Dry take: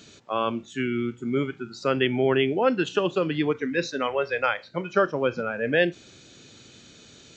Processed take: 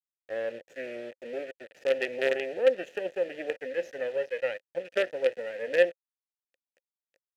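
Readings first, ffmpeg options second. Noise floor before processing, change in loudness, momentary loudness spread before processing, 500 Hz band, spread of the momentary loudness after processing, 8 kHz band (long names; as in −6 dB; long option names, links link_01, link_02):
−51 dBFS, −5.0 dB, 7 LU, −2.5 dB, 13 LU, can't be measured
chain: -filter_complex "[0:a]equalizer=frequency=4000:width_type=o:width=0.87:gain=-13,asplit=2[link_01][link_02];[link_02]aeval=exprs='sgn(val(0))*max(abs(val(0))-0.00562,0)':channel_layout=same,volume=-12dB[link_03];[link_01][link_03]amix=inputs=2:normalize=0,aexciter=amount=3.4:drive=8.9:freq=5300,acrusher=bits=3:dc=4:mix=0:aa=0.000001,asplit=3[link_04][link_05][link_06];[link_04]bandpass=frequency=530:width_type=q:width=8,volume=0dB[link_07];[link_05]bandpass=frequency=1840:width_type=q:width=8,volume=-6dB[link_08];[link_06]bandpass=frequency=2480:width_type=q:width=8,volume=-9dB[link_09];[link_07][link_08][link_09]amix=inputs=3:normalize=0,volume=4.5dB"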